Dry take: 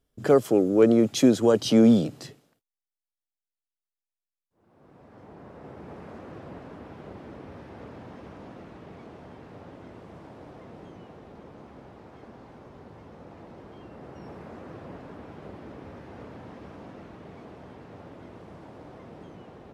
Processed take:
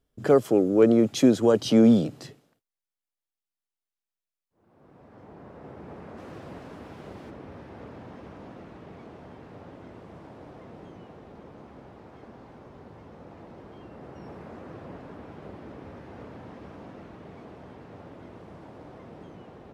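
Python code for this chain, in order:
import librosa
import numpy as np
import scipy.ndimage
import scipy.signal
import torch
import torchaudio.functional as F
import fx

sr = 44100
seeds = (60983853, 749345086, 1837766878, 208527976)

y = fx.high_shelf(x, sr, hz=3500.0, db=fx.steps((0.0, -3.5), (6.17, 8.5), (7.29, -2.0)))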